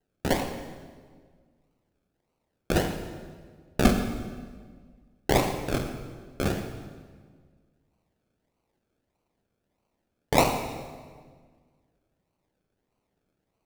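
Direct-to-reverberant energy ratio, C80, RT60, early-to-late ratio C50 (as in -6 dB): 6.0 dB, 8.5 dB, 1.6 s, 7.0 dB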